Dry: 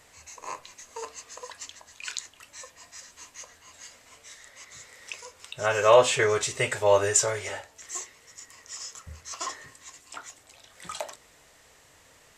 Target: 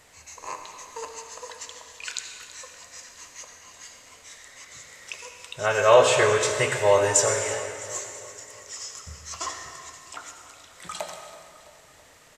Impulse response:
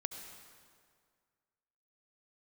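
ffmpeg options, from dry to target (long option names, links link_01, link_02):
-filter_complex "[0:a]aecho=1:1:330|660|990|1320|1650:0.141|0.0819|0.0475|0.0276|0.016[link_01];[1:a]atrim=start_sample=2205[link_02];[link_01][link_02]afir=irnorm=-1:irlink=0,volume=3dB"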